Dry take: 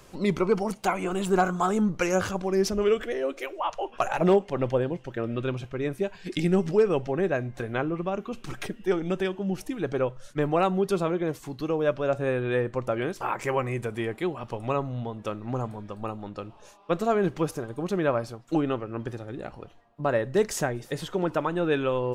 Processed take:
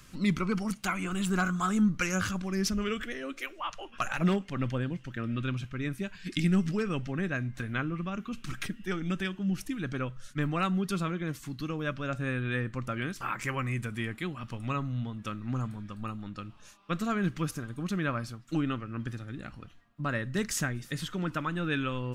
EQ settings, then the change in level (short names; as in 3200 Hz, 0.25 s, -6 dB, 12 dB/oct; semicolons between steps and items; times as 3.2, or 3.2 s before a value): band shelf 580 Hz -13.5 dB; 0.0 dB